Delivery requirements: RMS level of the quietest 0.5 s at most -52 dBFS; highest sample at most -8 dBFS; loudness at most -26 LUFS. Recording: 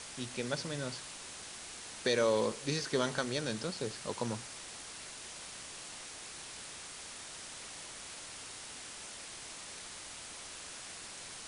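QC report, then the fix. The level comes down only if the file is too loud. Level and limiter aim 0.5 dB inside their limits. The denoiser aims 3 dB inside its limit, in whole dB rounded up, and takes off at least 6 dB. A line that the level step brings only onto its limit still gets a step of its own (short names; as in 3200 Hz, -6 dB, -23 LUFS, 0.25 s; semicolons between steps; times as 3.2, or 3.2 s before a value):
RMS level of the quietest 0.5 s -47 dBFS: fail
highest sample -16.5 dBFS: OK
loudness -38.5 LUFS: OK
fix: denoiser 8 dB, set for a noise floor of -47 dBFS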